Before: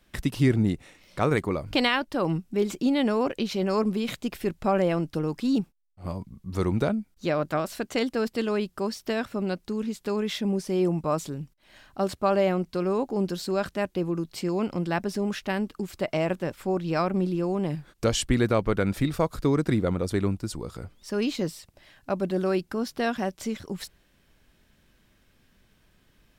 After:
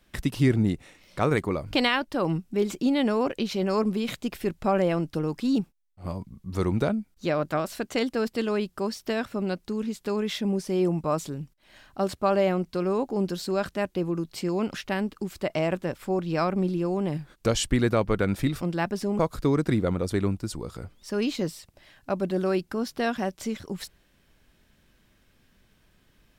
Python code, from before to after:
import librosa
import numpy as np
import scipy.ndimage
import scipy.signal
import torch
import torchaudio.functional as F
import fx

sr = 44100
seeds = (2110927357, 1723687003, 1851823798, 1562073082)

y = fx.edit(x, sr, fx.move(start_s=14.74, length_s=0.58, to_s=19.19), tone=tone)